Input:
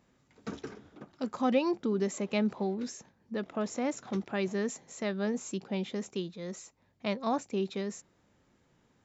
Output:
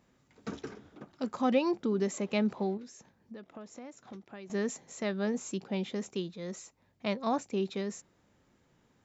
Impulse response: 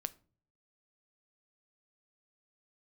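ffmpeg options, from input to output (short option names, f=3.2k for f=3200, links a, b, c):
-filter_complex "[0:a]asettb=1/sr,asplit=3[a][b][c];[a]atrim=end=2.774[d];[b]atrim=start=2.77:end=4.5,asetpts=PTS-STARTPTS,afade=t=in:d=0.004:c=qsin,afade=t=out:st=1.726:d=0.004:c=qsin,acompressor=threshold=-45dB:ratio=6[e];[c]atrim=start=4.496[f];[d][e]acrossfade=d=0.004:c1=hsin:c2=qsin[g];[g][f]acrossfade=d=0.004:c1=qsin:c2=hsin"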